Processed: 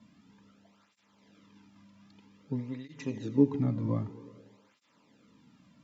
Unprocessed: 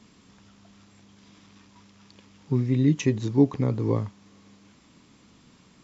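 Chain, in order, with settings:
low-pass filter 3,100 Hz 6 dB per octave
notch comb filter 370 Hz
convolution reverb RT60 1.7 s, pre-delay 53 ms, DRR 13 dB
through-zero flanger with one copy inverted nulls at 0.52 Hz, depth 2.5 ms
level −2.5 dB

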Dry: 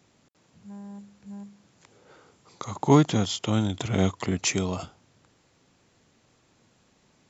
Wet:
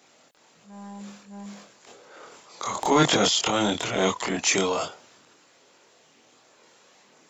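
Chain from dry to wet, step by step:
high-pass filter 400 Hz 12 dB per octave
transient designer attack −7 dB, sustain +10 dB, from 0:03.74 sustain +4 dB
multi-voice chorus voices 4, 0.54 Hz, delay 25 ms, depth 1.1 ms
boost into a limiter +19.5 dB
level −8 dB

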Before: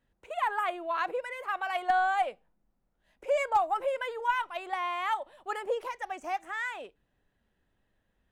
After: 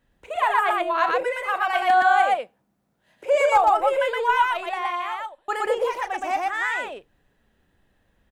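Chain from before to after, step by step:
0:01.88–0:03.55: high-pass filter 80 Hz 24 dB per octave
0:04.43–0:05.48: fade out
loudspeakers that aren't time-aligned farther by 12 metres −11 dB, 41 metres −1 dB
level +7 dB

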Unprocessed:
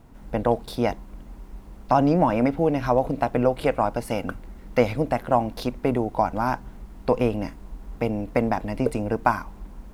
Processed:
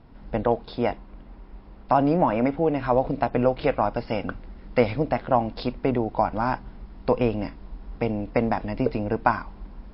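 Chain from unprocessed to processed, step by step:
0:00.45–0:02.93: bass and treble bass −3 dB, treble −7 dB
MP3 32 kbit/s 12,000 Hz

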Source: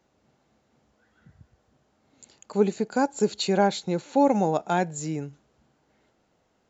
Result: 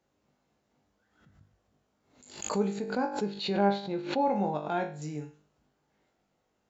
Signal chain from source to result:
0:02.76–0:05.02: low-pass filter 4,300 Hz 24 dB per octave
tuned comb filter 50 Hz, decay 0.39 s, harmonics all, mix 90%
background raised ahead of every attack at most 95 dB per second

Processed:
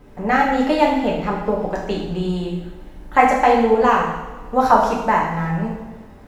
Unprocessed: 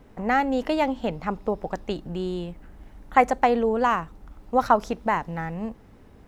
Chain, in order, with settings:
coupled-rooms reverb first 0.9 s, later 2.3 s, from −17 dB, DRR −4 dB
level +1.5 dB

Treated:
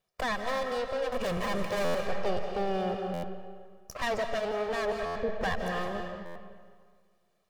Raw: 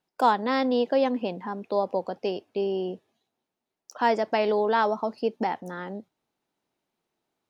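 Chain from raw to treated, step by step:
lower of the sound and its delayed copy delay 1.7 ms
0:01.12–0:01.91: leveller curve on the samples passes 5
brickwall limiter −20.5 dBFS, peak gain reduction 7 dB
soft clipping −26.5 dBFS, distortion −13 dB
0:04.92–0:05.36: Butterworth low-pass 580 Hz 36 dB per octave
comb and all-pass reverb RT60 1.8 s, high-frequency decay 0.75×, pre-delay 120 ms, DRR 4 dB
speech leveller within 4 dB 0.5 s
buffer that repeats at 0:01.84/0:03.13/0:05.05/0:06.25, samples 512, times 8

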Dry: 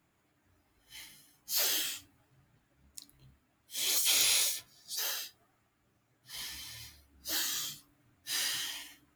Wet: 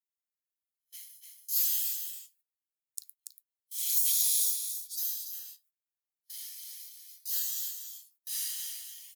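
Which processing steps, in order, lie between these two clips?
high-pass filter 160 Hz
high-shelf EQ 7,000 Hz +7 dB
leveller curve on the samples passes 1
noise gate −53 dBFS, range −23 dB
first difference
single-tap delay 285 ms −8 dB
gain on a spectral selection 0:04.10–0:05.33, 920–3,200 Hz −8 dB
one half of a high-frequency compander encoder only
level −8 dB

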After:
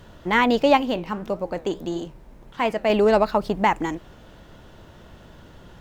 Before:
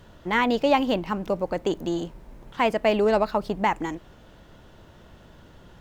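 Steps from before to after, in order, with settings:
0:00.77–0:02.90: flanger 1.6 Hz, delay 8.4 ms, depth 6.8 ms, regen −80%
level +3.5 dB

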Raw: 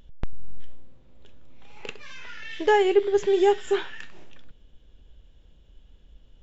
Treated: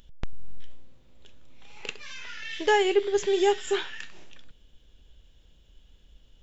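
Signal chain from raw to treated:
high-shelf EQ 2,300 Hz +10.5 dB
level −3.5 dB

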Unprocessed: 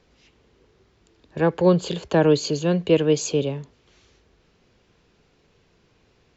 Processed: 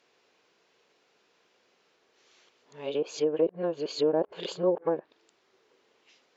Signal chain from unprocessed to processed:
played backwards from end to start
treble cut that deepens with the level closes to 600 Hz, closed at −14.5 dBFS
high-pass filter 460 Hz 12 dB per octave
level −2.5 dB

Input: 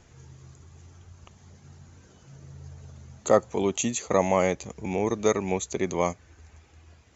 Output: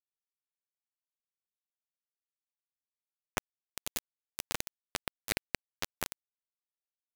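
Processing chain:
octave-band graphic EQ 125/250/500/1,000/2,000/4,000 Hz +8/+3/−8/−10/+7/+6 dB
feedback delay with all-pass diffusion 491 ms, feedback 47%, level −11.5 dB
reversed playback
downward compressor 8 to 1, threshold −33 dBFS, peak gain reduction 15 dB
reversed playback
comb and all-pass reverb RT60 1.8 s, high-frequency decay 0.4×, pre-delay 10 ms, DRR 0.5 dB
bit reduction 4 bits
level +4 dB

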